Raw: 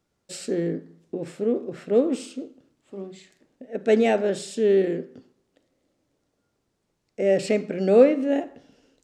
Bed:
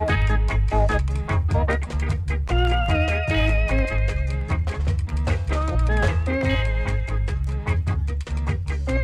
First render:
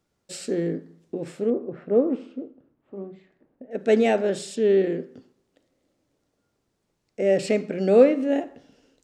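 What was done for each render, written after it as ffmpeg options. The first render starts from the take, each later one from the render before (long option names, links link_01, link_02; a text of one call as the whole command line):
ffmpeg -i in.wav -filter_complex "[0:a]asettb=1/sr,asplit=3[link_01][link_02][link_03];[link_01]atrim=end=1.504[link_04];[link_02]atrim=start=1.5:end=3.71,asetpts=PTS-STARTPTS,afade=type=in:duration=0.004:curve=qsin,afade=type=out:start_time=2.206:duration=0.004:curve=qsin,lowpass=1400[link_05];[link_03]atrim=start=3.706[link_06];[link_04][link_05]acrossfade=duration=0.004:curve1=hsin:curve2=qsin[link_07];[link_07][link_06]acrossfade=duration=0.004:curve1=qsin:curve2=hsin,asettb=1/sr,asplit=3[link_08][link_09][link_10];[link_08]atrim=end=4.564[link_11];[link_09]atrim=start=4.56:end=4.99,asetpts=PTS-STARTPTS,afade=type=in:duration=0.004:curve=qsin,afade=type=out:start_time=0.426:duration=0.004:curve=qsin,lowpass=5800[link_12];[link_10]atrim=start=4.986[link_13];[link_11][link_12]acrossfade=duration=0.004:curve1=hsin:curve2=qsin[link_14];[link_14][link_13]acrossfade=duration=0.004:curve1=qsin:curve2=hsin" out.wav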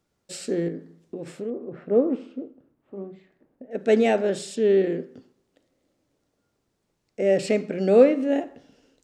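ffmpeg -i in.wav -filter_complex "[0:a]asettb=1/sr,asplit=3[link_01][link_02][link_03];[link_01]atrim=end=0.684[link_04];[link_02]atrim=start=0.68:end=1.83,asetpts=PTS-STARTPTS,afade=type=in:duration=0.004:curve=qsin,afade=type=out:start_time=1.146:duration=0.004:curve=qsin,acompressor=threshold=-32dB:ratio=2:attack=3.2:release=140:knee=1:detection=peak[link_05];[link_03]atrim=start=1.826[link_06];[link_04][link_05]acrossfade=duration=0.004:curve1=hsin:curve2=qsin[link_07];[link_07][link_06]acrossfade=duration=0.004:curve1=qsin:curve2=hsin" out.wav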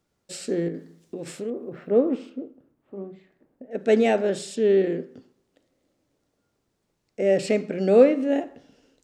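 ffmpeg -i in.wav -filter_complex "[0:a]asettb=1/sr,asplit=3[link_01][link_02][link_03];[link_01]atrim=end=0.744[link_04];[link_02]atrim=start=0.74:end=2.3,asetpts=PTS-STARTPTS,afade=type=in:duration=0.004:curve=qsin,afade=type=out:start_time=1.556:duration=0.004:curve=qsin,highshelf=frequency=2600:gain=10[link_05];[link_03]atrim=start=2.296[link_06];[link_04][link_05]acrossfade=duration=0.004:curve1=hsin:curve2=qsin[link_07];[link_07][link_06]acrossfade=duration=0.004:curve1=qsin:curve2=hsin" out.wav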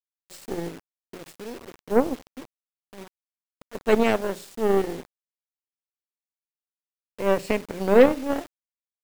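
ffmpeg -i in.wav -af "aeval=exprs='0.631*(cos(1*acos(clip(val(0)/0.631,-1,1)))-cos(1*PI/2))+0.02*(cos(2*acos(clip(val(0)/0.631,-1,1)))-cos(2*PI/2))+0.0501*(cos(6*acos(clip(val(0)/0.631,-1,1)))-cos(6*PI/2))+0.0562*(cos(7*acos(clip(val(0)/0.631,-1,1)))-cos(7*PI/2))':channel_layout=same,acrusher=bits=6:mix=0:aa=0.000001" out.wav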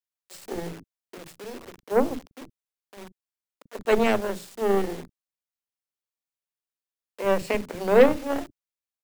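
ffmpeg -i in.wav -filter_complex "[0:a]acrossover=split=270[link_01][link_02];[link_01]adelay=40[link_03];[link_03][link_02]amix=inputs=2:normalize=0" out.wav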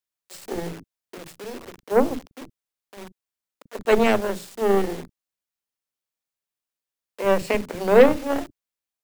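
ffmpeg -i in.wav -af "volume=3dB,alimiter=limit=-3dB:level=0:latency=1" out.wav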